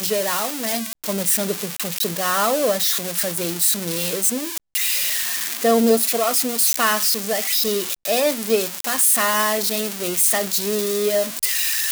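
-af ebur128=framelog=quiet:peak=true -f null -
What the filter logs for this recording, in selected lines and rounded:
Integrated loudness:
  I:         -18.9 LUFS
  Threshold: -28.9 LUFS
Loudness range:
  LRA:         2.1 LU
  Threshold: -38.7 LUFS
  LRA low:   -19.9 LUFS
  LRA high:  -17.8 LUFS
True peak:
  Peak:       -5.5 dBFS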